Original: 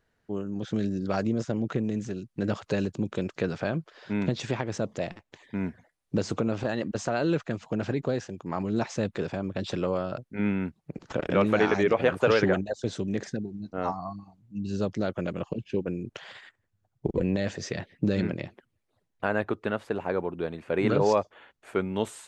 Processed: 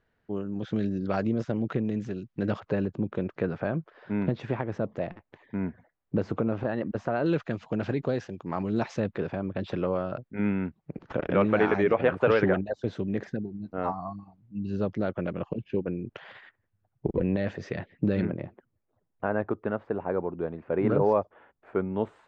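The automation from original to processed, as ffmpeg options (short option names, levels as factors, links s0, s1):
-af "asetnsamples=n=441:p=0,asendcmd='2.6 lowpass f 1800;7.26 lowpass f 4000;9 lowpass f 2400;18.25 lowpass f 1300',lowpass=3400"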